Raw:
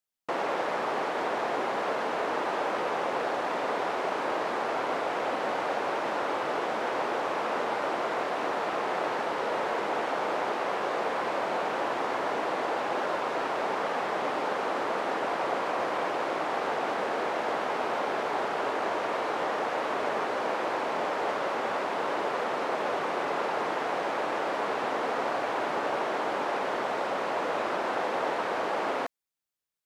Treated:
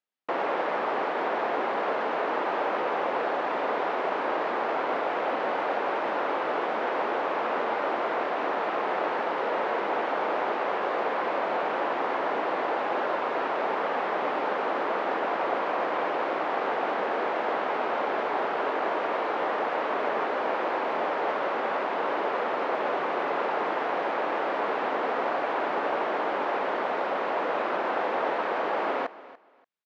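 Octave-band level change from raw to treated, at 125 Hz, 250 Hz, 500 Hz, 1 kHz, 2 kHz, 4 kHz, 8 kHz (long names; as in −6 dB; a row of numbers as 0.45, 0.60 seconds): can't be measured, +1.0 dB, +2.0 dB, +2.0 dB, +1.5 dB, −2.0 dB, below −10 dB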